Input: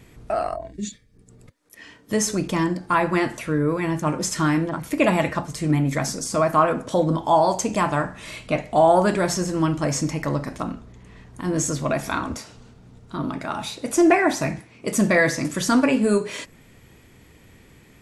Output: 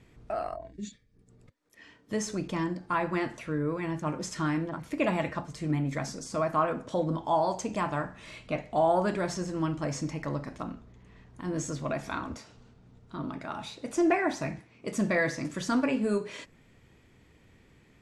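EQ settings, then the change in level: distance through air 57 m; -8.5 dB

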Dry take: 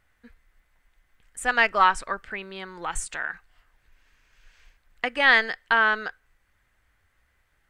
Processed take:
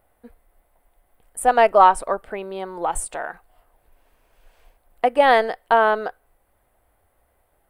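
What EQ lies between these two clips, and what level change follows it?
FFT filter 160 Hz 0 dB, 700 Hz +13 dB, 1.7 kHz -8 dB, 3.4 kHz -5 dB, 6.7 kHz -9 dB, 9.8 kHz +9 dB; +2.0 dB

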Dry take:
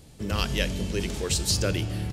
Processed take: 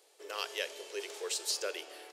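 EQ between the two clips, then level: elliptic high-pass 400 Hz, stop band 50 dB; -7.0 dB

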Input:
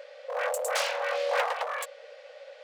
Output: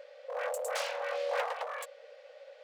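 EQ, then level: bass shelf 370 Hz +9.5 dB; -7.5 dB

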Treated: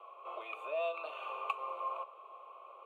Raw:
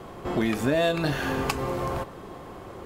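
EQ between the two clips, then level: vowel filter a; ladder high-pass 500 Hz, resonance 20%; static phaser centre 1.1 kHz, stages 8; +8.0 dB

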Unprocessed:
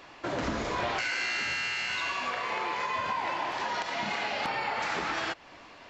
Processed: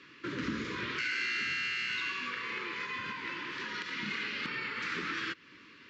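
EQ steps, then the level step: high-pass 130 Hz 12 dB/octave; Butterworth band-stop 720 Hz, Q 0.72; distance through air 120 m; 0.0 dB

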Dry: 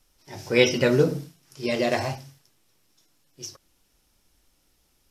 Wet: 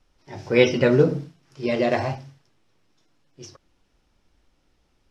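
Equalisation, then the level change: distance through air 62 m; treble shelf 3.8 kHz -9.5 dB; +3.0 dB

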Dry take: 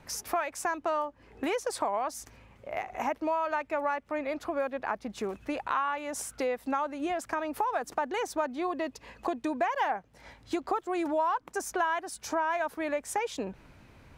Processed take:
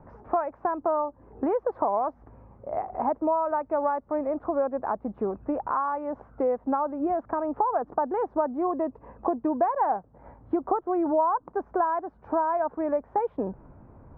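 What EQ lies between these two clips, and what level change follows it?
low-pass 1.1 kHz 24 dB/octave; +5.5 dB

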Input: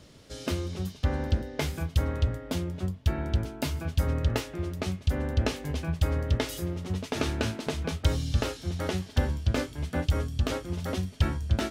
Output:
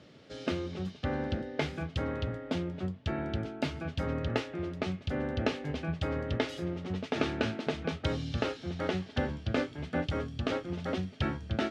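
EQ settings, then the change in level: band-pass 140–3500 Hz; band-stop 1 kHz, Q 8.8; 0.0 dB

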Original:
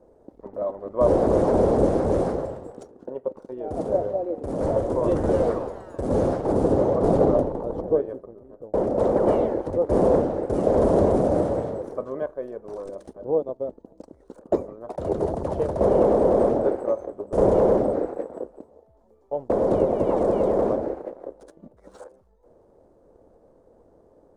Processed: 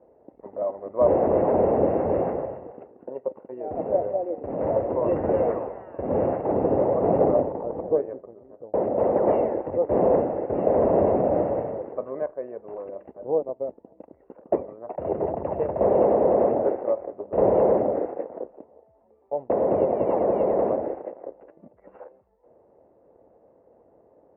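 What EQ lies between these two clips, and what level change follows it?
high-pass 79 Hz; rippled Chebyshev low-pass 2.8 kHz, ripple 6 dB; +1.5 dB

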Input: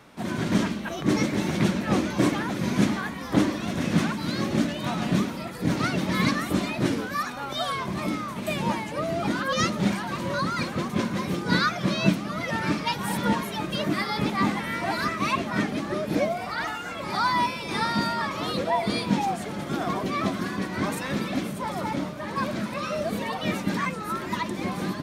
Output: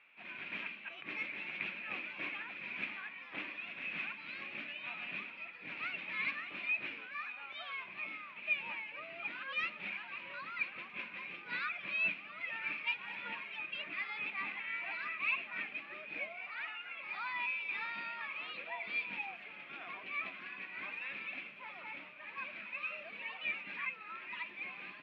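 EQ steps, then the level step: band-pass filter 2.5 kHz, Q 9.9; distance through air 370 m; +8.5 dB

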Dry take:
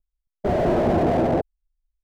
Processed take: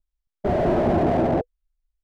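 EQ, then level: treble shelf 4.8 kHz -6.5 dB; band-stop 490 Hz, Q 12; 0.0 dB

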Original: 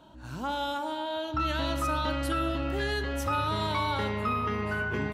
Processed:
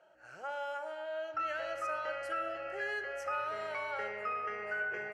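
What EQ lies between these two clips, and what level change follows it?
band-pass 480–5100 Hz; static phaser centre 1 kHz, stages 6; -2.0 dB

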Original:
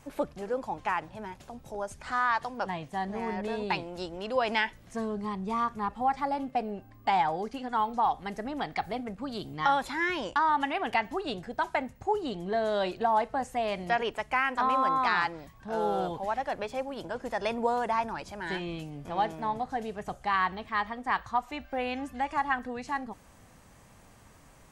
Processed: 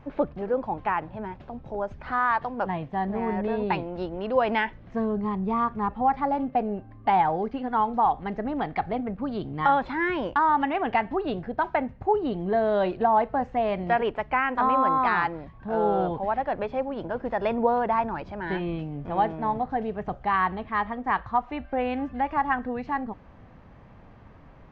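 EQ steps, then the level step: distance through air 150 m; tape spacing loss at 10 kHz 43 dB; treble shelf 3.3 kHz +10 dB; +8.0 dB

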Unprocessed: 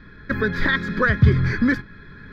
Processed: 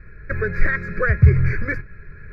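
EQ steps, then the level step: tilt EQ -2 dB/octave; peaking EQ 2.3 kHz +12.5 dB 0.25 oct; static phaser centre 920 Hz, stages 6; -1.5 dB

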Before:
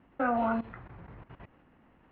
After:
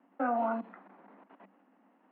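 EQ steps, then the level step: rippled Chebyshev high-pass 190 Hz, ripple 6 dB; treble shelf 3.4 kHz -8 dB; 0.0 dB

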